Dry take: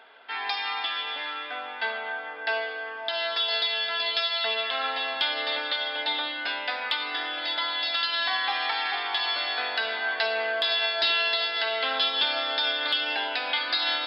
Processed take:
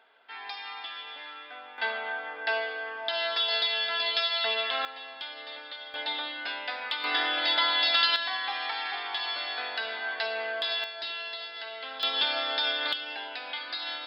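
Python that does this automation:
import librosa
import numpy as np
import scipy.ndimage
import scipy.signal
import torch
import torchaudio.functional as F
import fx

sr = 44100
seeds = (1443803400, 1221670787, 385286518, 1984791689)

y = fx.gain(x, sr, db=fx.steps((0.0, -9.5), (1.78, -1.0), (4.85, -13.0), (5.94, -4.5), (7.04, 3.5), (8.16, -5.0), (10.84, -12.0), (12.03, -2.0), (12.93, -9.0)))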